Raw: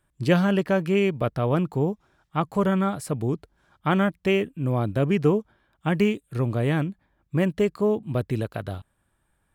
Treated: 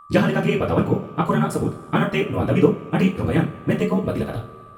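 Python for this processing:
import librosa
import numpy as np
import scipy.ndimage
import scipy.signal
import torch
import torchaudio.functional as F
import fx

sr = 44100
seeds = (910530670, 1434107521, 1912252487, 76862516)

y = fx.rev_double_slope(x, sr, seeds[0], early_s=0.51, late_s=4.3, knee_db=-22, drr_db=-4.0)
y = y + 10.0 ** (-40.0 / 20.0) * np.sin(2.0 * np.pi * 1200.0 * np.arange(len(y)) / sr)
y = fx.stretch_grains(y, sr, factor=0.5, grain_ms=26.0)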